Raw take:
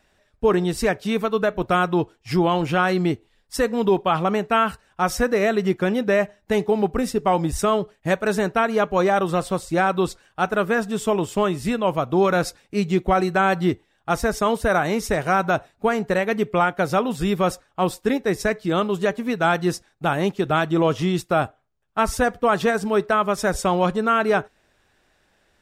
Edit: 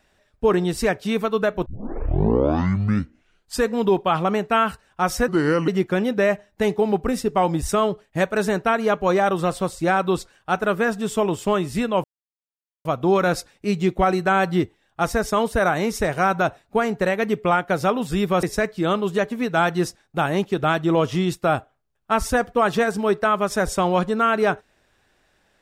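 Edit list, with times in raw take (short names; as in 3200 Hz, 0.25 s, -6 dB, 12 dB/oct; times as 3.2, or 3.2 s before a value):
1.66 tape start 2.05 s
5.28–5.58 speed 75%
11.94 insert silence 0.81 s
17.52–18.3 cut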